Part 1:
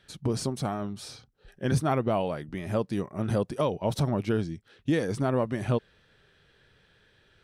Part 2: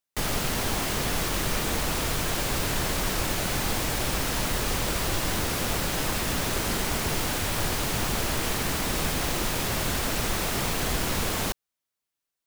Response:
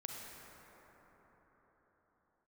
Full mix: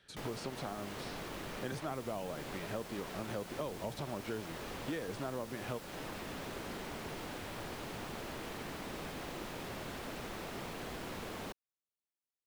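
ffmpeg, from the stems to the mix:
-filter_complex "[0:a]volume=-4dB[link_01];[1:a]equalizer=frequency=280:width_type=o:width=3:gain=6,volume=-15.5dB[link_02];[link_01][link_02]amix=inputs=2:normalize=0,lowshelf=frequency=150:gain=-6,acrossover=split=380|4200[link_03][link_04][link_05];[link_03]acompressor=threshold=-44dB:ratio=4[link_06];[link_04]acompressor=threshold=-40dB:ratio=4[link_07];[link_05]acompressor=threshold=-56dB:ratio=4[link_08];[link_06][link_07][link_08]amix=inputs=3:normalize=0"

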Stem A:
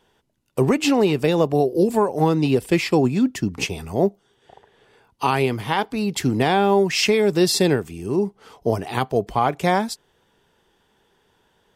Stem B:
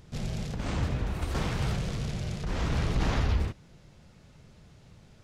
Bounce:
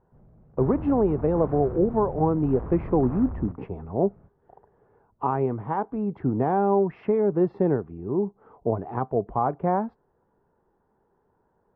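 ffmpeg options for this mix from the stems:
ffmpeg -i stem1.wav -i stem2.wav -filter_complex "[0:a]volume=-4dB,asplit=2[link_01][link_02];[1:a]asoftclip=type=tanh:threshold=-32.5dB,volume=1.5dB[link_03];[link_02]apad=whole_len=231036[link_04];[link_03][link_04]sidechaingate=range=-19dB:threshold=-46dB:ratio=16:detection=peak[link_05];[link_01][link_05]amix=inputs=2:normalize=0,lowpass=frequency=1200:width=0.5412,lowpass=frequency=1200:width=1.3066" out.wav

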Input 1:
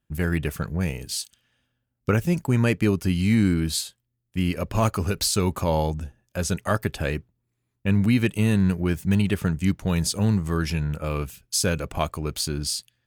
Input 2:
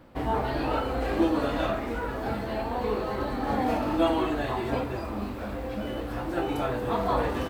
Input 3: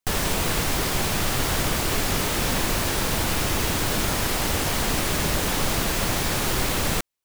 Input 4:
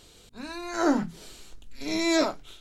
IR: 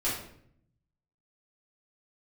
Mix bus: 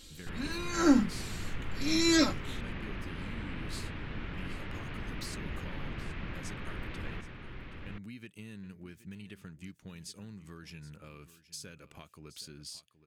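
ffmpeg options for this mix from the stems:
-filter_complex "[0:a]highpass=frequency=310:poles=1,highshelf=frequency=7500:gain=-9,acompressor=threshold=-30dB:ratio=6,volume=-11dB,asplit=2[link_01][link_02];[link_02]volume=-15.5dB[link_03];[2:a]lowpass=frequency=2600:width=0.5412,lowpass=frequency=2600:width=1.3066,adelay=200,volume=-13.5dB,asplit=2[link_04][link_05];[link_05]volume=-4.5dB[link_06];[3:a]aecho=1:1:3.7:0.65,volume=0.5dB[link_07];[link_03][link_06]amix=inputs=2:normalize=0,aecho=0:1:773:1[link_08];[link_01][link_04][link_07][link_08]amix=inputs=4:normalize=0,equalizer=frequency=720:width_type=o:width=1.6:gain=-11"

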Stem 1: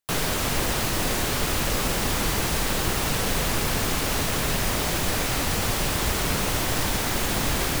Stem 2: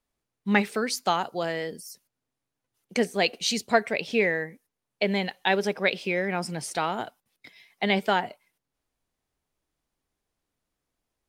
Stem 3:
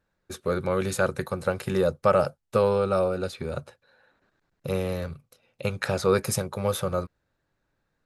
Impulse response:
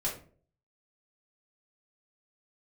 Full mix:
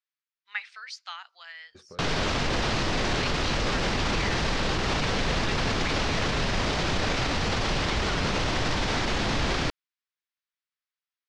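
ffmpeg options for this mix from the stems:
-filter_complex "[0:a]adelay=1900,volume=2dB[link_01];[1:a]highpass=frequency=1300:width=0.5412,highpass=frequency=1300:width=1.3066,volume=-7dB[link_02];[2:a]acompressor=threshold=-32dB:ratio=6,adelay=1450,volume=-13dB[link_03];[link_01][link_02][link_03]amix=inputs=3:normalize=0,lowpass=frequency=5400:width=0.5412,lowpass=frequency=5400:width=1.3066,alimiter=limit=-17.5dB:level=0:latency=1:release=20"

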